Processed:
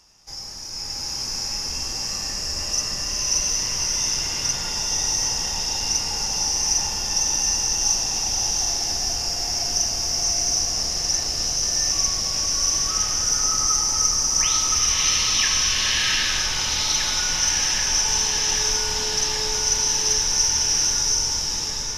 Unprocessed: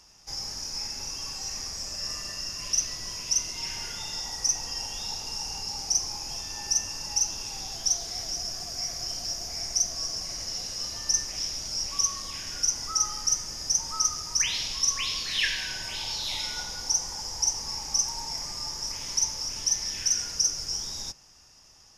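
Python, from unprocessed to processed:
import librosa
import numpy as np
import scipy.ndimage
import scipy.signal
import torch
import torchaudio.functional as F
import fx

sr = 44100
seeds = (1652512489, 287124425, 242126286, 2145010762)

y = fx.dmg_tone(x, sr, hz=430.0, level_db=-41.0, at=(18.04, 19.5), fade=0.02)
y = fx.echo_opening(y, sr, ms=785, hz=750, octaves=2, feedback_pct=70, wet_db=-3)
y = fx.rev_bloom(y, sr, seeds[0], attack_ms=740, drr_db=-6.5)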